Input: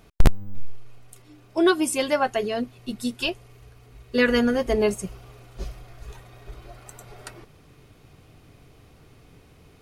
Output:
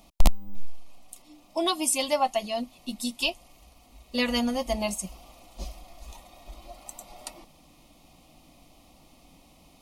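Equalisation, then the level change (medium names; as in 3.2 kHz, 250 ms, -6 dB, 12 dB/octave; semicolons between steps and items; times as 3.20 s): dynamic bell 330 Hz, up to -6 dB, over -33 dBFS, Q 0.72; bass shelf 450 Hz -5.5 dB; static phaser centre 420 Hz, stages 6; +4.0 dB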